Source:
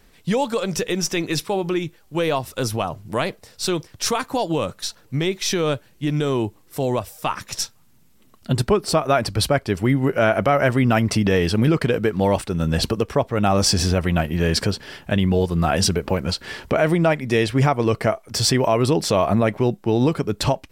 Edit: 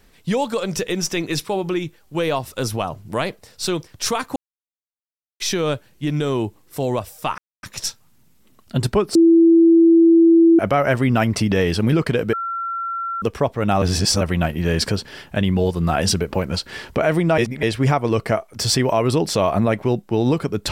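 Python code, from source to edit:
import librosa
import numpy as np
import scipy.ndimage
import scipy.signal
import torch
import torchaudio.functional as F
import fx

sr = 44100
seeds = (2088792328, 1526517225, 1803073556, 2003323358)

y = fx.edit(x, sr, fx.silence(start_s=4.36, length_s=1.04),
    fx.insert_silence(at_s=7.38, length_s=0.25),
    fx.bleep(start_s=8.9, length_s=1.44, hz=332.0, db=-8.0),
    fx.bleep(start_s=12.08, length_s=0.89, hz=1360.0, db=-22.5),
    fx.reverse_span(start_s=13.57, length_s=0.39),
    fx.reverse_span(start_s=17.13, length_s=0.25), tone=tone)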